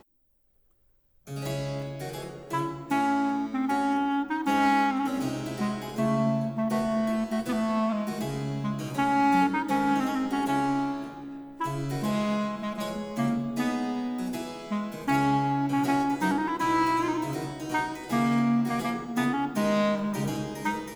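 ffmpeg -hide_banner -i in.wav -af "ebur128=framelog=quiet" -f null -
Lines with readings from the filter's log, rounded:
Integrated loudness:
  I:         -27.7 LUFS
  Threshold: -38.0 LUFS
Loudness range:
  LRA:         3.6 LU
  Threshold: -47.8 LUFS
  LRA low:   -30.2 LUFS
  LRA high:  -26.6 LUFS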